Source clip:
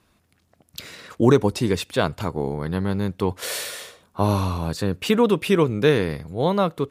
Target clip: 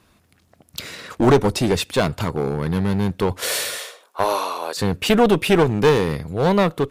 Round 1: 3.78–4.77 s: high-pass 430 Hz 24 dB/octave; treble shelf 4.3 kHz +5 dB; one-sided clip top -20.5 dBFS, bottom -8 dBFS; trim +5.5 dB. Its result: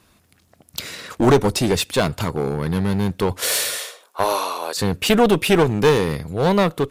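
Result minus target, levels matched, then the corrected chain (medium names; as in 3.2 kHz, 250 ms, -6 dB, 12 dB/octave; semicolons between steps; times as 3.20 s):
8 kHz band +3.5 dB
3.78–4.77 s: high-pass 430 Hz 24 dB/octave; one-sided clip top -20.5 dBFS, bottom -8 dBFS; trim +5.5 dB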